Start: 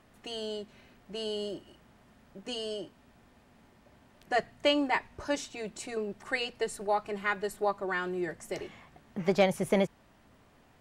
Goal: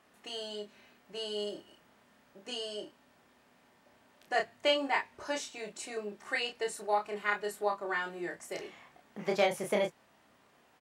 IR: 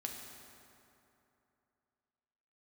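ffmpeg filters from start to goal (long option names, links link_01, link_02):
-af "highpass=frequency=440:poles=1,aecho=1:1:29|48:0.668|0.15,volume=-2dB"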